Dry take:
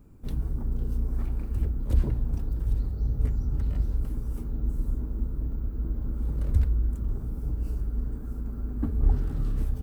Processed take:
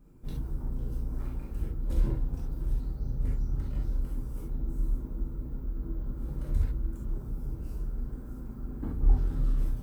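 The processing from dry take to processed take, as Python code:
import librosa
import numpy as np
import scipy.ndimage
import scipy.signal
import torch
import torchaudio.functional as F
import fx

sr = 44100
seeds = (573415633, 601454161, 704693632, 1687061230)

y = fx.rev_gated(x, sr, seeds[0], gate_ms=90, shape='flat', drr_db=-3.0)
y = y * 10.0 ** (-7.0 / 20.0)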